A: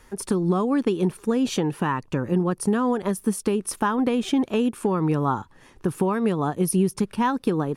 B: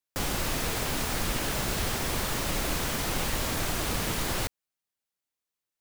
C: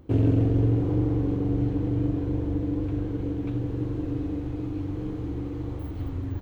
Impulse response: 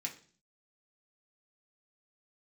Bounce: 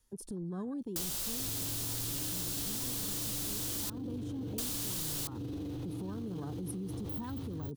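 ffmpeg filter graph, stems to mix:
-filter_complex "[0:a]afwtdn=0.0316,lowshelf=f=210:g=11,volume=0.2[s0];[1:a]adelay=800,volume=0.251,asplit=3[s1][s2][s3];[s1]atrim=end=3.9,asetpts=PTS-STARTPTS,afade=t=out:st=3.896:d=0.004:c=hsin[s4];[s2]atrim=start=3.9:end=4.58,asetpts=PTS-STARTPTS,volume=0[s5];[s3]atrim=start=4.58,asetpts=PTS-STARTPTS,afade=t=in:d=0.004:c=hsin[s6];[s4][s5][s6]concat=n=3:v=0:a=1[s7];[2:a]highpass=f=86:w=0.5412,highpass=f=86:w=1.3066,equalizer=f=7100:w=4.9:g=-5.5,adelay=1300,volume=0.668[s8];[s0][s8]amix=inputs=2:normalize=0,acrossover=split=350|3000[s9][s10][s11];[s10]acompressor=threshold=0.0112:ratio=6[s12];[s9][s12][s11]amix=inputs=3:normalize=0,alimiter=level_in=2.66:limit=0.0631:level=0:latency=1:release=20,volume=0.376,volume=1[s13];[s7][s13]amix=inputs=2:normalize=0,aexciter=amount=2.5:drive=8.9:freq=3100,acompressor=threshold=0.0224:ratio=6"

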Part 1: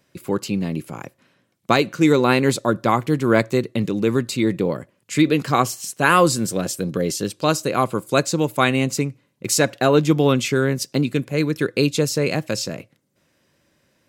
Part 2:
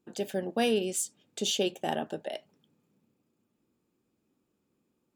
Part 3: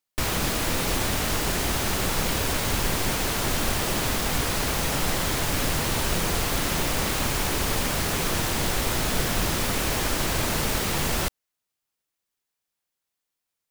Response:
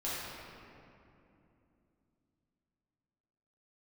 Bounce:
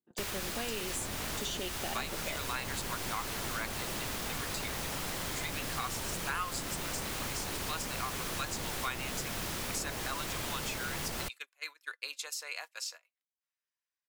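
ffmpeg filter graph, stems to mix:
-filter_complex "[0:a]highpass=f=940:w=0.5412,highpass=f=940:w=1.3066,highshelf=f=4600:g=2.5,flanger=delay=0.9:depth=3.3:regen=75:speed=0.2:shape=sinusoidal,adelay=250,volume=0.531[s0];[1:a]alimiter=limit=0.0841:level=0:latency=1,volume=1.06[s1];[2:a]volume=0.398[s2];[s0][s1][s2]amix=inputs=3:normalize=0,agate=range=0.1:threshold=0.00891:ratio=16:detection=peak,acrossover=split=80|1100[s3][s4][s5];[s3]acompressor=threshold=0.00501:ratio=4[s6];[s4]acompressor=threshold=0.01:ratio=4[s7];[s5]acompressor=threshold=0.0158:ratio=4[s8];[s6][s7][s8]amix=inputs=3:normalize=0"

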